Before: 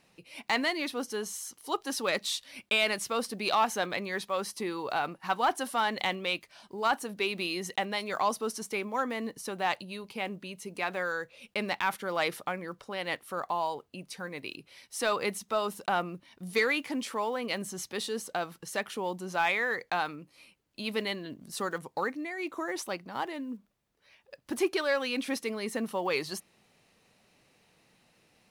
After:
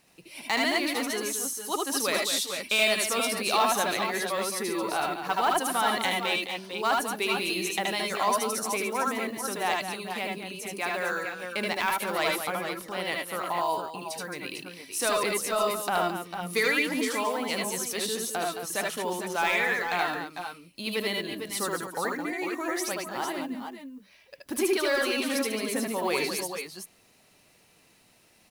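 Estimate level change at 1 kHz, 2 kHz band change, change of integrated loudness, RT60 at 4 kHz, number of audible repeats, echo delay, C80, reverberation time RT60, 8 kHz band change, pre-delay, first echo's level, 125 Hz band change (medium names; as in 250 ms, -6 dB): +3.5 dB, +4.0 dB, +4.0 dB, no reverb, 3, 75 ms, no reverb, no reverb, +9.0 dB, no reverb, -1.0 dB, +2.0 dB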